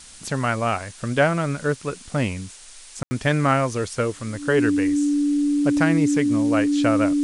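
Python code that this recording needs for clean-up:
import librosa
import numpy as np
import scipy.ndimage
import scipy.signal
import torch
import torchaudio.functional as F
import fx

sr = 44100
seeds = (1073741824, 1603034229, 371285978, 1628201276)

y = fx.notch(x, sr, hz=290.0, q=30.0)
y = fx.fix_ambience(y, sr, seeds[0], print_start_s=1.64, print_end_s=2.14, start_s=3.03, end_s=3.11)
y = fx.noise_reduce(y, sr, print_start_s=2.47, print_end_s=2.97, reduce_db=24.0)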